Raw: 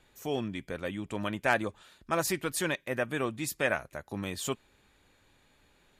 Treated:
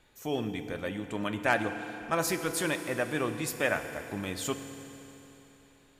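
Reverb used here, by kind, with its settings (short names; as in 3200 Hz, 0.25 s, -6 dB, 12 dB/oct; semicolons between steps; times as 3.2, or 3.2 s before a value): FDN reverb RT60 3.5 s, high-frequency decay 0.95×, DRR 7.5 dB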